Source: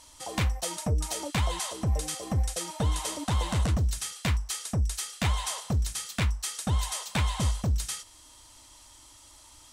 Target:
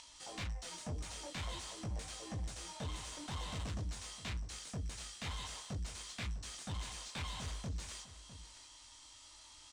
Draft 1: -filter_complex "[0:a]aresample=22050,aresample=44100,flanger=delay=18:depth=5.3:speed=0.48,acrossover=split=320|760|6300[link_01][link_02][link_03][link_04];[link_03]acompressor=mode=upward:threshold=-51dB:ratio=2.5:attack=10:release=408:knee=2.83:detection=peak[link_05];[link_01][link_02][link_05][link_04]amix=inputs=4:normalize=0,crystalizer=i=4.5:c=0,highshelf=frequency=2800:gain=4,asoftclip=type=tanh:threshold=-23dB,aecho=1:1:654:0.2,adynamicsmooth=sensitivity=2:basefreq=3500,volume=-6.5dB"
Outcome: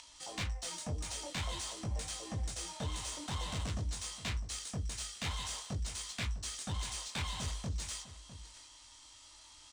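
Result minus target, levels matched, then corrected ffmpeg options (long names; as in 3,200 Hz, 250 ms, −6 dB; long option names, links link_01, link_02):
soft clipping: distortion −4 dB
-filter_complex "[0:a]aresample=22050,aresample=44100,flanger=delay=18:depth=5.3:speed=0.48,acrossover=split=320|760|6300[link_01][link_02][link_03][link_04];[link_03]acompressor=mode=upward:threshold=-51dB:ratio=2.5:attack=10:release=408:knee=2.83:detection=peak[link_05];[link_01][link_02][link_05][link_04]amix=inputs=4:normalize=0,crystalizer=i=4.5:c=0,highshelf=frequency=2800:gain=4,asoftclip=type=tanh:threshold=-29.5dB,aecho=1:1:654:0.2,adynamicsmooth=sensitivity=2:basefreq=3500,volume=-6.5dB"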